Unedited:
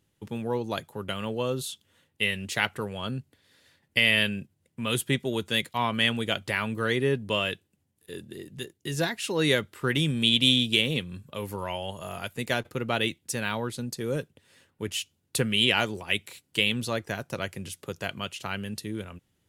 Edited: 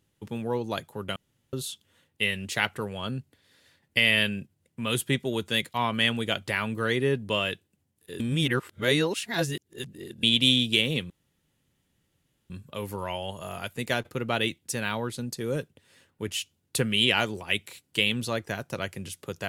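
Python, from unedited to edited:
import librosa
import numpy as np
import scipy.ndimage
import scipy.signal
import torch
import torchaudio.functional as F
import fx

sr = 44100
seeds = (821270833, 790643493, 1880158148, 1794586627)

y = fx.edit(x, sr, fx.room_tone_fill(start_s=1.16, length_s=0.37),
    fx.reverse_span(start_s=8.2, length_s=2.03),
    fx.insert_room_tone(at_s=11.1, length_s=1.4), tone=tone)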